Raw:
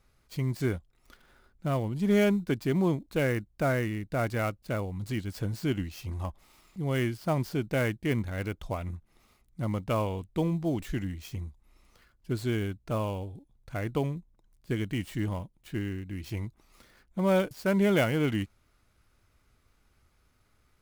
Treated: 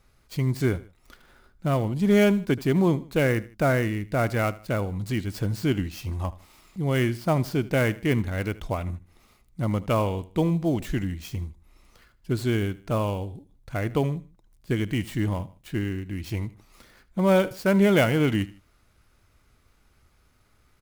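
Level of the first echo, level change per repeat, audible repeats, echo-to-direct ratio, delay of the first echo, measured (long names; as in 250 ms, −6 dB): −19.0 dB, −7.5 dB, 2, −18.5 dB, 77 ms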